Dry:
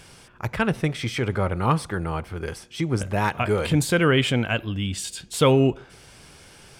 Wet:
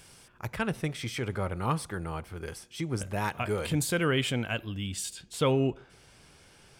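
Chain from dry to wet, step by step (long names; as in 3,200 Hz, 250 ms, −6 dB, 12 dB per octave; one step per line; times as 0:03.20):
high-shelf EQ 6,600 Hz +8.5 dB, from 0:05.13 −2.5 dB
level −8 dB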